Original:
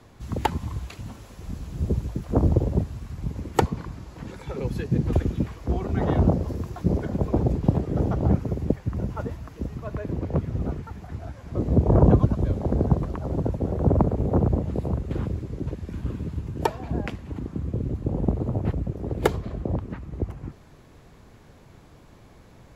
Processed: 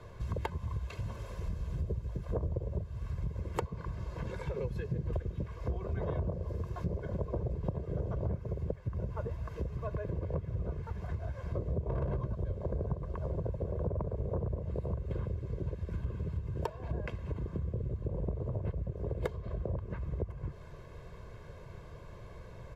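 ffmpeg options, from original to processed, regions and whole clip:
-filter_complex "[0:a]asettb=1/sr,asplit=3[s0][s1][s2];[s0]atrim=end=11.814[s3];[s1]atrim=start=11.81:end=12.32,asetpts=PTS-STARTPTS,afade=t=in:d=0.004:c=qsin,afade=t=out:st=0.506:d=0.004:c=qsin,bandreject=f=60:t=h:w=6,bandreject=f=120:t=h:w=6,bandreject=f=180:t=h:w=6,bandreject=f=240:t=h:w=6,bandreject=f=300:t=h:w=6,bandreject=f=360:t=h:w=6,bandreject=f=420:t=h:w=6,bandreject=f=480:t=h:w=6,bandreject=f=540:t=h:w=6,bandreject=f=600:t=h:w=6,asplit=2[s4][s5];[s5]adelay=15,volume=0.501[s6];[s4][s6]amix=inputs=2:normalize=0,atrim=end_sample=22491,asoftclip=type=hard:threshold=0.188[s7];[s2]atrim=start=12.316[s8];[s3][s7]acrossfade=d=0.004:c1=hsin:c2=qsin[s9];[s9][s8]acrossfade=d=0.004:c1=qsin:c2=hsin,aecho=1:1:1.9:0.74,acompressor=threshold=0.0224:ratio=5,highshelf=f=4000:g=-10.5"

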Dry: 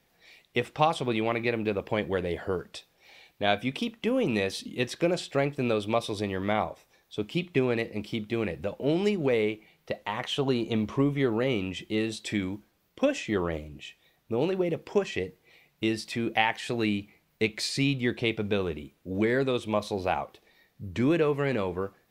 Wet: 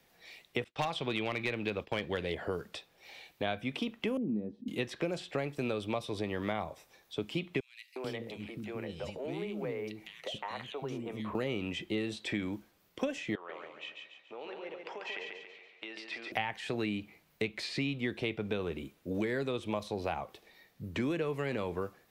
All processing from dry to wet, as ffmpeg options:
-filter_complex "[0:a]asettb=1/sr,asplit=3[s0][s1][s2];[s0]atrim=end=0.644[s3];[s1]atrim=start=0.64:end=2.35,asetpts=PTS-STARTPTS,afade=t=in:d=0.004:c=qsin,afade=t=out:st=1.706:d=0.004:c=qsin,agate=range=0.0224:threshold=0.0158:ratio=3:release=100:detection=peak,equalizer=f=3800:w=0.73:g=10.5,asoftclip=type=hard:threshold=0.168[s4];[s2]atrim=start=2.346[s5];[s3][s4]acrossfade=d=0.004:c1=hsin:c2=qsin[s6];[s6][s5]acrossfade=d=0.004:c1=qsin:c2=hsin,asettb=1/sr,asplit=3[s7][s8][s9];[s7]atrim=end=4.174[s10];[s8]atrim=start=4.17:end=4.68,asetpts=PTS-STARTPTS,afade=t=in:d=0.004:c=qsin,afade=t=out:st=0.506:d=0.004:c=qsin,lowpass=f=230:t=q:w=2.8,aemphasis=mode=production:type=bsi[s11];[s9]atrim=start=4.676[s12];[s10][s11]acrossfade=d=0.004:c1=hsin:c2=qsin[s13];[s13][s12]acrossfade=d=0.004:c1=qsin:c2=hsin,asettb=1/sr,asplit=3[s14][s15][s16];[s14]atrim=end=7.604[s17];[s15]atrim=start=7.6:end=11.35,asetpts=PTS-STARTPTS,afade=t=in:d=0.004:c=qsin,afade=t=out:st=3.746:d=0.004:c=qsin,acompressor=threshold=0.01:ratio=2:attack=3.2:release=140:knee=1:detection=peak,acrossover=split=330|2400[s18][s19][s20];[s19]adelay=360[s21];[s18]adelay=440[s22];[s22][s21][s20]amix=inputs=3:normalize=0,atrim=end_sample=165375[s23];[s16]atrim=start=11.346[s24];[s17][s23]acrossfade=d=0.004:c1=hsin:c2=qsin[s25];[s25][s24]acrossfade=d=0.004:c1=qsin:c2=hsin,asettb=1/sr,asplit=3[s26][s27][s28];[s26]atrim=end=13.354[s29];[s27]atrim=start=13.35:end=16.32,asetpts=PTS-STARTPTS,afade=t=in:d=0.004:c=qsin,afade=t=out:st=2.966:d=0.004:c=qsin,acompressor=threshold=0.0224:ratio=6:attack=3.2:release=140:knee=1:detection=peak,highpass=690,lowpass=3200,aecho=1:1:141|282|423|564|705:0.596|0.262|0.115|0.0507|0.0223,atrim=end_sample=130977[s30];[s28]atrim=start=16.316[s31];[s29][s30]acrossfade=d=0.004:c1=hsin:c2=qsin[s32];[s32][s31]acrossfade=d=0.004:c1=qsin:c2=hsin,lowshelf=f=210:g=-4.5,acrossover=split=170|3500[s33][s34][s35];[s33]acompressor=threshold=0.00562:ratio=4[s36];[s34]acompressor=threshold=0.0178:ratio=4[s37];[s35]acompressor=threshold=0.00178:ratio=4[s38];[s36][s37][s38]amix=inputs=3:normalize=0,volume=1.26"

